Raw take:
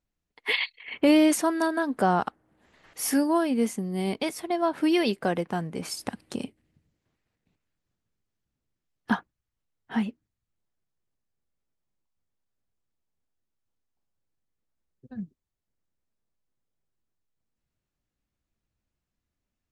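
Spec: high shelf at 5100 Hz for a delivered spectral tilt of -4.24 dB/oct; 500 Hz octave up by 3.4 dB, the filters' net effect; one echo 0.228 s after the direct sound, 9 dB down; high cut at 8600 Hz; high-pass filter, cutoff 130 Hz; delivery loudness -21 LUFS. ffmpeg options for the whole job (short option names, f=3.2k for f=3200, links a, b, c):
-af "highpass=130,lowpass=8.6k,equalizer=f=500:t=o:g=5,highshelf=f=5.1k:g=-5,aecho=1:1:228:0.355,volume=3.5dB"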